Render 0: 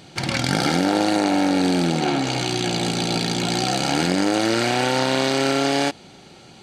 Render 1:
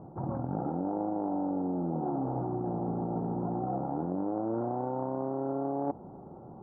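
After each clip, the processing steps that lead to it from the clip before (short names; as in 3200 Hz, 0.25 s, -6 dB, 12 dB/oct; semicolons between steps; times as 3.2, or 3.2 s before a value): steep low-pass 1100 Hz 48 dB/oct; reverse; compressor 5:1, threshold -30 dBFS, peak gain reduction 13 dB; reverse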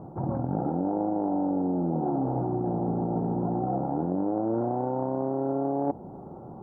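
dynamic EQ 1200 Hz, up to -5 dB, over -55 dBFS, Q 2.2; gain +5 dB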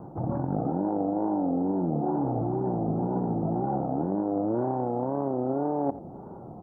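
wow and flutter 120 cents; echo 86 ms -16.5 dB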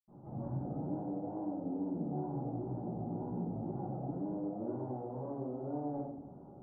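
reverb RT60 0.95 s, pre-delay 77 ms; gain -1 dB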